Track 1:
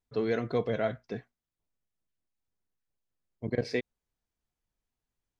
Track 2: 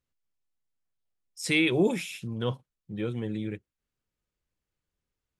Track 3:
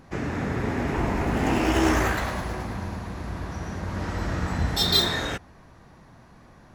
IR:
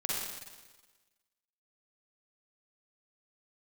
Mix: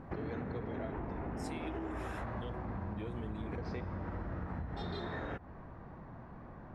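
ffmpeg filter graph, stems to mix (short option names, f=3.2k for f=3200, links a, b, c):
-filter_complex "[0:a]equalizer=f=9.7k:w=1.3:g=-14.5,volume=-10.5dB,asplit=2[a][b];[b]volume=-15dB[c];[1:a]alimiter=limit=-21dB:level=0:latency=1:release=415,volume=-0.5dB[d];[2:a]lowpass=1.4k,volume=1.5dB[e];[d][e]amix=inputs=2:normalize=0,acompressor=threshold=-32dB:ratio=6,volume=0dB[f];[3:a]atrim=start_sample=2205[g];[c][g]afir=irnorm=-1:irlink=0[h];[a][f][h]amix=inputs=3:normalize=0,acompressor=threshold=-37dB:ratio=4"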